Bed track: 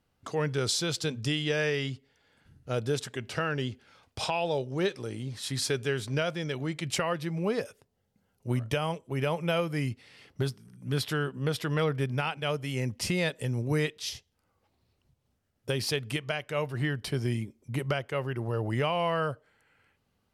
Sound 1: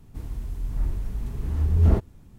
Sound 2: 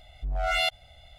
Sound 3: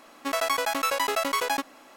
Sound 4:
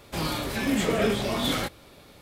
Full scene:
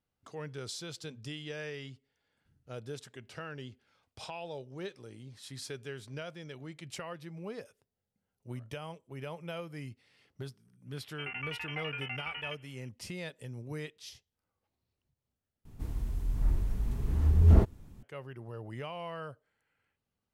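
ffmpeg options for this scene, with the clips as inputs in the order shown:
ffmpeg -i bed.wav -i cue0.wav -i cue1.wav -i cue2.wav -filter_complex "[0:a]volume=-12.5dB[link_01];[3:a]lowpass=frequency=2900:width_type=q:width=0.5098,lowpass=frequency=2900:width_type=q:width=0.6013,lowpass=frequency=2900:width_type=q:width=0.9,lowpass=frequency=2900:width_type=q:width=2.563,afreqshift=-3400[link_02];[link_01]asplit=2[link_03][link_04];[link_03]atrim=end=15.654[link_05];[1:a]atrim=end=2.38,asetpts=PTS-STARTPTS,volume=-2dB[link_06];[link_04]atrim=start=18.026[link_07];[link_02]atrim=end=1.96,asetpts=PTS-STARTPTS,volume=-13.5dB,afade=type=in:duration=0.004:curve=hsin,afade=type=out:start_time=1.956:duration=0.004:curve=hsin,adelay=10930[link_08];[link_05][link_06]acrossfade=duration=0.004:curve1=hsin:curve2=hsin[link_09];[link_09][link_07]acrossfade=duration=0.004:curve1=hsin:curve2=hsin[link_10];[link_10][link_08]amix=inputs=2:normalize=0" out.wav

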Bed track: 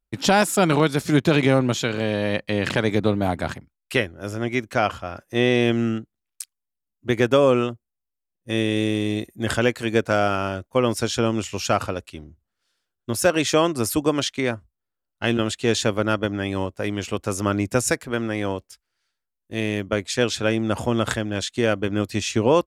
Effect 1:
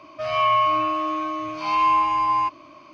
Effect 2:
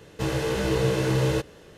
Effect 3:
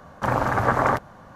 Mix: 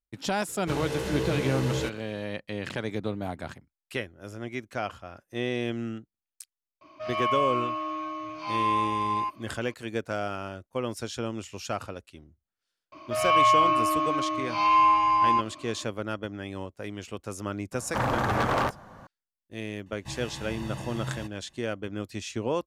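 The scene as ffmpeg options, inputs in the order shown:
ffmpeg -i bed.wav -i cue0.wav -i cue1.wav -i cue2.wav -filter_complex "[2:a]asplit=2[link_01][link_02];[1:a]asplit=2[link_03][link_04];[0:a]volume=-11dB[link_05];[3:a]asoftclip=type=hard:threshold=-19.5dB[link_06];[link_02]aecho=1:1:1.1:0.94[link_07];[link_01]atrim=end=1.77,asetpts=PTS-STARTPTS,volume=-5.5dB,afade=type=in:duration=0.004:curve=hsin,afade=type=out:start_time=1.766:duration=0.004:curve=hsin,adelay=480[link_08];[link_03]atrim=end=2.93,asetpts=PTS-STARTPTS,volume=-7.5dB,afade=type=in:duration=0.004:curve=hsin,afade=type=out:start_time=2.926:duration=0.004:curve=hsin,adelay=6810[link_09];[link_04]atrim=end=2.93,asetpts=PTS-STARTPTS,volume=-1dB,afade=type=in:duration=0.004:curve=hsin,afade=type=out:start_time=2.926:duration=0.004:curve=hsin,adelay=12920[link_10];[link_06]atrim=end=1.35,asetpts=PTS-STARTPTS,volume=-2dB,afade=type=in:duration=0.004:curve=hsin,afade=type=out:start_time=1.346:duration=0.004:curve=hsin,adelay=17720[link_11];[link_07]atrim=end=1.77,asetpts=PTS-STARTPTS,volume=-15.5dB,afade=type=in:duration=0.004:curve=hsin,afade=type=out:start_time=1.766:duration=0.004:curve=hsin,adelay=19860[link_12];[link_05][link_08][link_09][link_10][link_11][link_12]amix=inputs=6:normalize=0" out.wav

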